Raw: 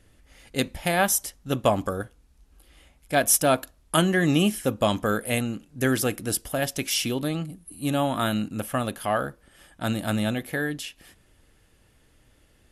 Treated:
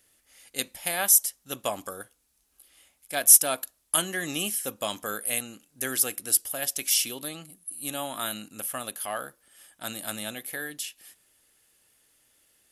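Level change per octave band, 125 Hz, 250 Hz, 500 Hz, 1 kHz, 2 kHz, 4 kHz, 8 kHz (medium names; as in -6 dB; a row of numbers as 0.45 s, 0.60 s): -18.0 dB, -14.0 dB, -10.0 dB, -8.0 dB, -5.5 dB, -1.5 dB, +5.5 dB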